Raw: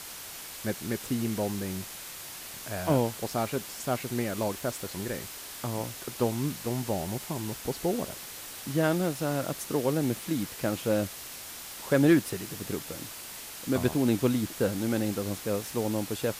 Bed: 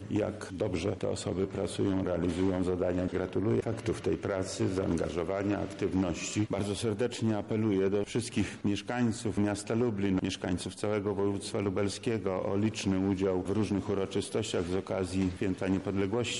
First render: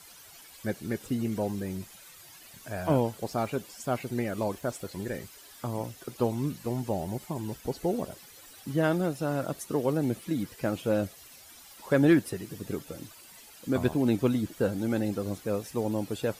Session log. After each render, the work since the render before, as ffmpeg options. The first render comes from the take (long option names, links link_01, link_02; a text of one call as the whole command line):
ffmpeg -i in.wav -af "afftdn=noise_reduction=13:noise_floor=-42" out.wav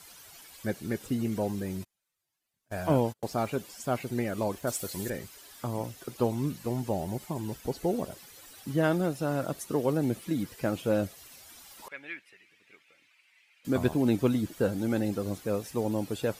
ffmpeg -i in.wav -filter_complex "[0:a]asplit=3[link_01][link_02][link_03];[link_01]afade=type=out:start_time=1.83:duration=0.02[link_04];[link_02]agate=range=-34dB:threshold=-38dB:ratio=16:release=100:detection=peak,afade=type=in:start_time=1.83:duration=0.02,afade=type=out:start_time=3.26:duration=0.02[link_05];[link_03]afade=type=in:start_time=3.26:duration=0.02[link_06];[link_04][link_05][link_06]amix=inputs=3:normalize=0,asettb=1/sr,asplit=3[link_07][link_08][link_09];[link_07]atrim=end=4.674[link_10];[link_08]atrim=start=4.67:end=5.1,asetpts=PTS-STARTPTS,afade=type=in:duration=0.004:curve=qsin,afade=type=out:start_time=0.426:duration=0.004:curve=qsin,highshelf=frequency=4300:gain=12[link_11];[link_09]atrim=start=5.096[link_12];[link_10][link_11]acrossfade=duration=0.004:curve1=hsin:curve2=qsin[link_13];[link_13][link_12]acrossfade=duration=0.004:curve1=qsin:curve2=hsin,asettb=1/sr,asplit=3[link_14][link_15][link_16];[link_14]atrim=end=11.884[link_17];[link_15]atrim=start=11.88:end=13.65,asetpts=PTS-STARTPTS,afade=type=in:duration=0.004:curve=qsin,afade=type=out:start_time=1.766:duration=0.004:curve=qsin,bandpass=frequency=2300:width_type=q:width=4.8[link_18];[link_16]atrim=start=13.646[link_19];[link_17][link_18]acrossfade=duration=0.004:curve1=hsin:curve2=qsin[link_20];[link_20][link_19]acrossfade=duration=0.004:curve1=qsin:curve2=hsin" out.wav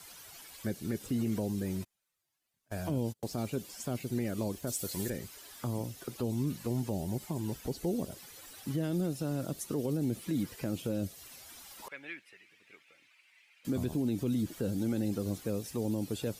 ffmpeg -i in.wav -filter_complex "[0:a]acrossover=split=420|3000[link_01][link_02][link_03];[link_02]acompressor=threshold=-43dB:ratio=6[link_04];[link_01][link_04][link_03]amix=inputs=3:normalize=0,alimiter=limit=-24dB:level=0:latency=1:release=34" out.wav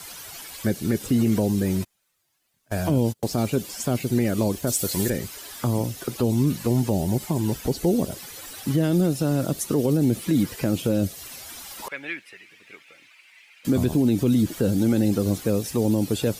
ffmpeg -i in.wav -af "volume=11.5dB" out.wav